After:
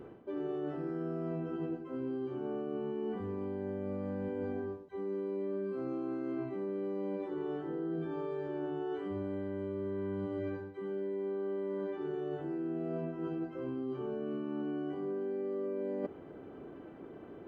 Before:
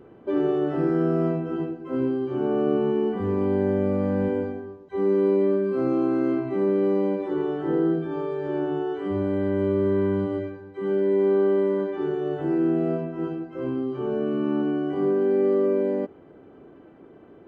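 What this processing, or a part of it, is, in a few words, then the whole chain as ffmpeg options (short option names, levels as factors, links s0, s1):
compression on the reversed sound: -af "areverse,acompressor=threshold=0.02:ratio=12,areverse"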